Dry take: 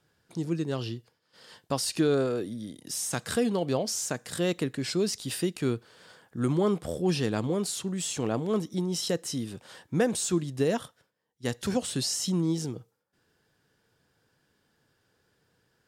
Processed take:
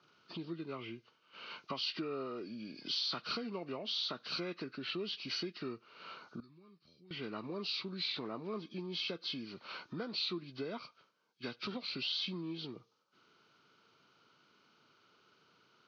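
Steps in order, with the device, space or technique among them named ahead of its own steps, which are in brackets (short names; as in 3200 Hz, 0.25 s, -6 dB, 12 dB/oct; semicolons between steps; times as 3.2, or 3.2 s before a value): hearing aid with frequency lowering (nonlinear frequency compression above 1100 Hz 1.5:1; compressor 3:1, threshold -44 dBFS, peak gain reduction 17 dB; speaker cabinet 260–5500 Hz, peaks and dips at 290 Hz -3 dB, 500 Hz -8 dB, 770 Hz -7 dB, 1200 Hz +6 dB, 1900 Hz -6 dB, 4500 Hz +4 dB); 6.4–7.11 passive tone stack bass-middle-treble 6-0-2; gain +5.5 dB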